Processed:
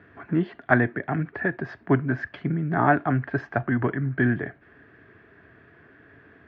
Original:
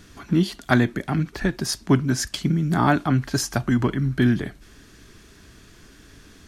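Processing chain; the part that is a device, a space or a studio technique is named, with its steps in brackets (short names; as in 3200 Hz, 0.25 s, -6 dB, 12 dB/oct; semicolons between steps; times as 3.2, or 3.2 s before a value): bass cabinet (speaker cabinet 90–2200 Hz, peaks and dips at 200 Hz -6 dB, 440 Hz +4 dB, 680 Hz +7 dB, 1700 Hz +8 dB); gain -3 dB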